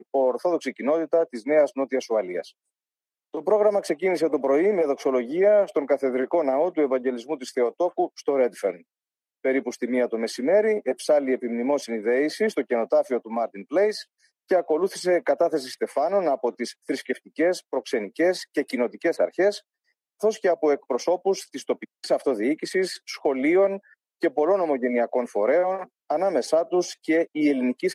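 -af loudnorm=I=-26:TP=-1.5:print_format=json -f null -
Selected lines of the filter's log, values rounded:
"input_i" : "-24.1",
"input_tp" : "-7.9",
"input_lra" : "2.9",
"input_thresh" : "-34.3",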